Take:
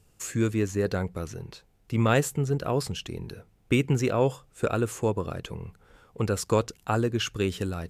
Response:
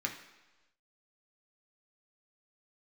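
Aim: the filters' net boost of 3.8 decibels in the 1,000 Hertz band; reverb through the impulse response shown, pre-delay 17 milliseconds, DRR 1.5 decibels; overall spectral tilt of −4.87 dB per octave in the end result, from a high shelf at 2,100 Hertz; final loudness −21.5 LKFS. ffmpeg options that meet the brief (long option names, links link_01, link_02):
-filter_complex "[0:a]equalizer=frequency=1000:width_type=o:gain=3.5,highshelf=frequency=2100:gain=6,asplit=2[link_01][link_02];[1:a]atrim=start_sample=2205,adelay=17[link_03];[link_02][link_03]afir=irnorm=-1:irlink=0,volume=-5dB[link_04];[link_01][link_04]amix=inputs=2:normalize=0,volume=3dB"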